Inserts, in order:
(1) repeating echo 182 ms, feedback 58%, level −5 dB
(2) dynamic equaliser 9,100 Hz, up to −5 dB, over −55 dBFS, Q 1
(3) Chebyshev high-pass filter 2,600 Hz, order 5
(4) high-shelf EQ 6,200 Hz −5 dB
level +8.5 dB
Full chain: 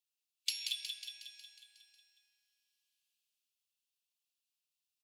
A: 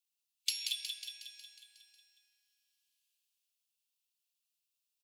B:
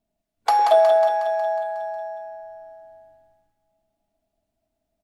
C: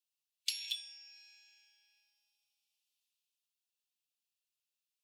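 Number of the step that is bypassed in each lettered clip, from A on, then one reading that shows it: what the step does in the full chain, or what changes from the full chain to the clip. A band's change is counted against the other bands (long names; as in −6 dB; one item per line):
4, change in integrated loudness +1.5 LU
3, change in crest factor −14.0 dB
1, change in momentary loudness spread +1 LU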